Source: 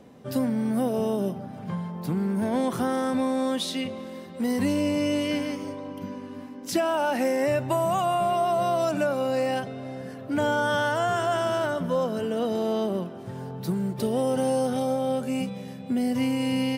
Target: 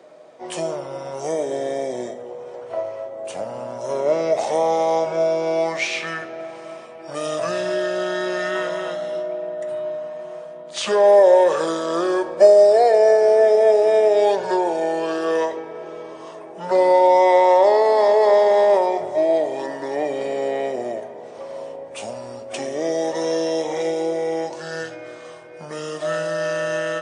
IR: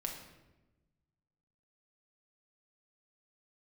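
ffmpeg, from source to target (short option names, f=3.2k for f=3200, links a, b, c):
-filter_complex "[0:a]highpass=f=960:t=q:w=4.3,asetrate=27386,aresample=44100,asplit=2[a][b];[1:a]atrim=start_sample=2205[c];[b][c]afir=irnorm=-1:irlink=0,volume=-4.5dB[d];[a][d]amix=inputs=2:normalize=0,volume=2.5dB"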